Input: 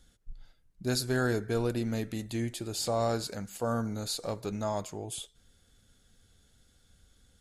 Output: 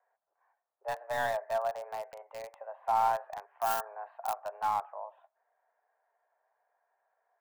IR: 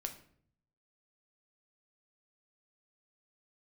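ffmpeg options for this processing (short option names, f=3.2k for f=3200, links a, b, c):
-filter_complex "[0:a]highpass=f=480:t=q:w=0.5412,highpass=f=480:t=q:w=1.307,lowpass=f=2.7k:t=q:w=0.5176,lowpass=f=2.7k:t=q:w=0.7071,lowpass=f=2.7k:t=q:w=1.932,afreqshift=210,acrossover=split=1300[a][b];[a]acontrast=65[c];[b]acrusher=bits=4:dc=4:mix=0:aa=0.000001[d];[c][d]amix=inputs=2:normalize=0,asettb=1/sr,asplit=3[e][f][g];[e]atrim=end=3.574[h];[f]atrim=start=3.57:end=4.4,asetpts=PTS-STARTPTS,afade=t=in:d=0.004:c=qsin,afade=t=out:st=0.826:d=0.004:c=qsin,aemphasis=mode=production:type=75fm[i];[g]atrim=start=4.396[j];[h][i]acrossfade=d=0.004:c1=hsin:c2=qsin[k];[k][j]acrossfade=d=0.004:c1=qsin:c2=hsin,volume=-1.5dB"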